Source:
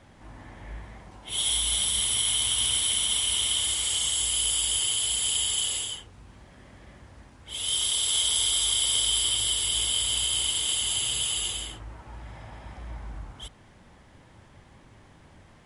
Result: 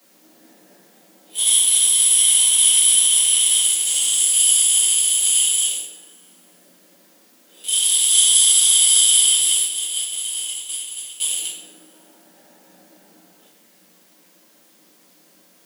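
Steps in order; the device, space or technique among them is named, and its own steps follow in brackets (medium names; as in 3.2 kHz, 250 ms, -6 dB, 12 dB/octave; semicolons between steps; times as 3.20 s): local Wiener filter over 41 samples; 9.64–11.20 s: expander -24 dBFS; turntable without a phono preamp (RIAA curve recording; white noise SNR 36 dB); steep high-pass 170 Hz 72 dB/octave; two-slope reverb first 0.5 s, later 2.3 s, from -25 dB, DRR -6.5 dB; trim -3 dB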